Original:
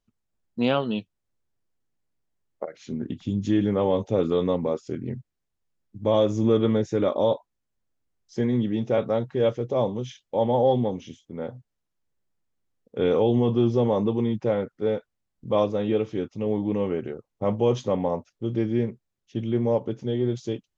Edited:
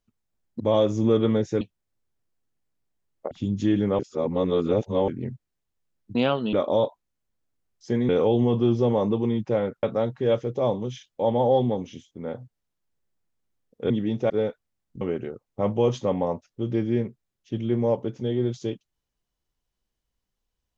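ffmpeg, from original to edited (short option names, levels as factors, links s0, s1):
-filter_complex "[0:a]asplit=13[s0][s1][s2][s3][s4][s5][s6][s7][s8][s9][s10][s11][s12];[s0]atrim=end=0.602[s13];[s1]atrim=start=5.998:end=7.012[s14];[s2]atrim=start=0.978:end=2.682[s15];[s3]atrim=start=3.158:end=3.842[s16];[s4]atrim=start=3.838:end=4.932,asetpts=PTS-STARTPTS,areverse[s17];[s5]atrim=start=4.928:end=6.002[s18];[s6]atrim=start=0.598:end=0.982[s19];[s7]atrim=start=7.008:end=8.572[s20];[s8]atrim=start=13.038:end=14.782[s21];[s9]atrim=start=8.968:end=13.042[s22];[s10]atrim=start=8.568:end=8.972[s23];[s11]atrim=start=14.778:end=15.492[s24];[s12]atrim=start=16.838[s25];[s13][s14]acrossfade=d=0.004:c1=hsin:c2=hsin[s26];[s26][s15]acrossfade=d=0.004:c1=hsin:c2=hsin[s27];[s27][s16]acrossfade=d=0.004:c1=hsin:c2=hsin[s28];[s28][s17]acrossfade=d=0.004:c1=hsin:c2=hsin[s29];[s29][s18]acrossfade=d=0.004:c1=hsin:c2=hsin[s30];[s30][s19]acrossfade=d=0.004:c1=hsin:c2=hsin[s31];[s31][s20]acrossfade=d=0.004:c1=hsin:c2=hsin[s32];[s32][s21]acrossfade=d=0.004:c1=hsin:c2=hsin[s33];[s33][s22]acrossfade=d=0.004:c1=hsin:c2=hsin[s34];[s34][s23]acrossfade=d=0.004:c1=hsin:c2=hsin[s35];[s35][s24]acrossfade=d=0.004:c1=hsin:c2=hsin[s36];[s36][s25]acrossfade=d=0.004:c1=hsin:c2=hsin"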